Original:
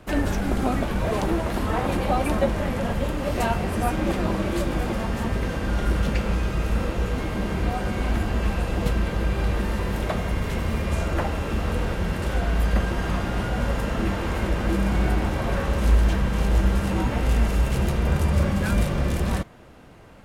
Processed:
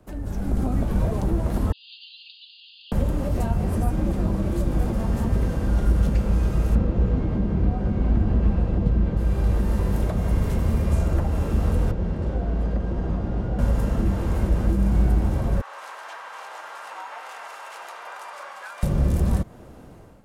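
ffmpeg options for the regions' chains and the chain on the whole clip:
ffmpeg -i in.wav -filter_complex "[0:a]asettb=1/sr,asplit=3[link_01][link_02][link_03];[link_01]atrim=end=1.724[link_04];[link_02]atrim=start=1.72:end=2.92,asetpts=PTS-STARTPTS,afade=type=in:duration=0.004:curve=qsin,afade=type=out:start_time=1.196:duration=0.004:curve=qsin,asuperpass=centerf=3600:order=20:qfactor=1.7,aecho=1:1:4.6:0.76,atrim=end_sample=52920[link_05];[link_03]atrim=start=2.916[link_06];[link_04][link_05]acrossfade=duration=0.004:curve1=hsin:curve2=qsin[link_07];[link_07][link_06]acrossfade=duration=0.004:curve1=qsin:curve2=hsin,asettb=1/sr,asplit=3[link_08][link_09][link_10];[link_08]atrim=end=6.754[link_11];[link_09]atrim=start=6.75:end=9.17,asetpts=PTS-STARTPTS,afade=type=in:duration=0.004:curve=qsin,afade=type=out:start_time=2.416:duration=0.004:curve=qsin,lowpass=3900,equalizer=frequency=250:width=0.47:gain=5[link_12];[link_10]atrim=start=9.166[link_13];[link_11][link_12]acrossfade=duration=0.004:curve1=hsin:curve2=qsin[link_14];[link_14][link_13]acrossfade=duration=0.004:curve1=qsin:curve2=hsin,asettb=1/sr,asplit=3[link_15][link_16][link_17];[link_15]atrim=end=11.914[link_18];[link_16]atrim=start=11.91:end=13.59,asetpts=PTS-STARTPTS,afade=type=in:duration=0.004:curve=qsin,afade=type=out:start_time=1.676:duration=0.004:curve=qsin,lowpass=4700,acrossover=split=120|750[link_19][link_20][link_21];[link_19]acompressor=threshold=-29dB:ratio=4[link_22];[link_20]acompressor=threshold=-33dB:ratio=4[link_23];[link_21]acompressor=threshold=-47dB:ratio=4[link_24];[link_22][link_23][link_24]amix=inputs=3:normalize=0[link_25];[link_17]atrim=start=13.586[link_26];[link_18][link_25]acrossfade=duration=0.004:curve1=hsin:curve2=qsin[link_27];[link_27][link_26]acrossfade=duration=0.004:curve1=qsin:curve2=hsin,asettb=1/sr,asplit=3[link_28][link_29][link_30];[link_28]atrim=end=15.614[link_31];[link_29]atrim=start=15.61:end=18.83,asetpts=PTS-STARTPTS,afade=type=in:duration=0.004:curve=qsin,afade=type=out:start_time=3.216:duration=0.004:curve=qsin,highpass=frequency=910:width=0.5412,highpass=frequency=910:width=1.3066,aemphasis=mode=reproduction:type=75fm[link_32];[link_30]atrim=start=18.826[link_33];[link_31][link_32]acrossfade=duration=0.004:curve1=hsin:curve2=qsin[link_34];[link_34][link_33]acrossfade=duration=0.004:curve1=qsin:curve2=hsin,acrossover=split=190[link_35][link_36];[link_36]acompressor=threshold=-32dB:ratio=6[link_37];[link_35][link_37]amix=inputs=2:normalize=0,equalizer=frequency=2500:width=0.56:gain=-10,dynaudnorm=framelen=180:gausssize=5:maxgain=11.5dB,volume=-6dB" out.wav

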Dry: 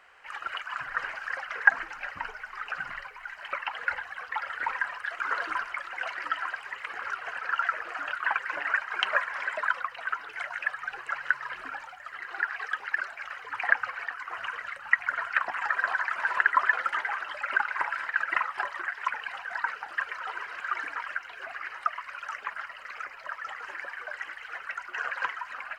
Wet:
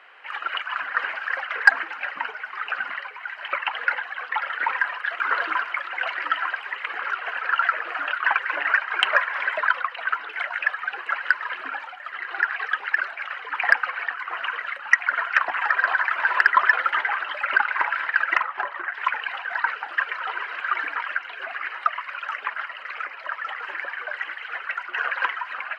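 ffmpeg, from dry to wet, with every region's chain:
ffmpeg -i in.wav -filter_complex "[0:a]asettb=1/sr,asplit=3[link_01][link_02][link_03];[link_01]atrim=end=18.374[link_04];[link_02]atrim=start=18.37:end=18.94,asetpts=PTS-STARTPTS,afade=type=in:duration=0.004:curve=qsin,afade=type=out:start_time=0.566:duration=0.004:curve=qsin,lowpass=frequency=1400:poles=1,aeval=exprs='clip(val(0),-1,0.0708)':channel_layout=same[link_05];[link_03]atrim=start=18.936[link_06];[link_04][link_05]acrossfade=duration=0.004:curve1=hsin:curve2=qsin[link_07];[link_07][link_06]acrossfade=duration=0.004:curve1=qsin:curve2=hsin,highpass=frequency=240:width=0.5412,highpass=frequency=240:width=1.3066,highshelf=frequency=4700:width_type=q:width=1.5:gain=-11.5,acontrast=45" out.wav

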